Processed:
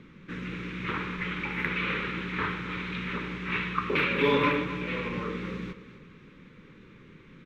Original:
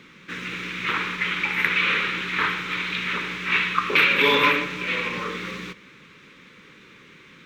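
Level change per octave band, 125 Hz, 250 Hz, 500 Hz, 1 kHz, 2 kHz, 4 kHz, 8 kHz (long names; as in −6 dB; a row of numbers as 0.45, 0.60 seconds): +2.5 dB, +1.0 dB, −2.0 dB, −6.5 dB, −9.5 dB, −12.0 dB, below −10 dB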